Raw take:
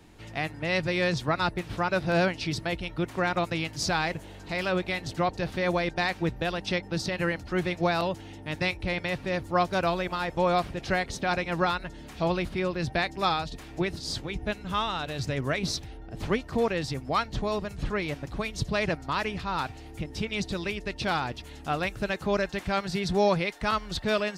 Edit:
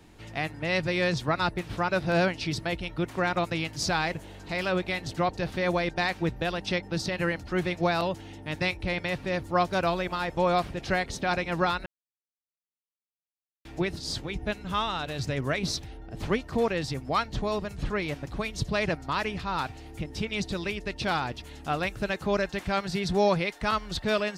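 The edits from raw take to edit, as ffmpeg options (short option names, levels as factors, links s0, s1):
-filter_complex "[0:a]asplit=3[s0][s1][s2];[s0]atrim=end=11.86,asetpts=PTS-STARTPTS,afade=t=out:st=11.856:d=0.004:c=hsin[s3];[s1]atrim=start=11.86:end=13.65,asetpts=PTS-STARTPTS,volume=0[s4];[s2]atrim=start=13.65,asetpts=PTS-STARTPTS,afade=t=in:d=0.004:c=hsin[s5];[s3][s4][s5]concat=n=3:v=0:a=1"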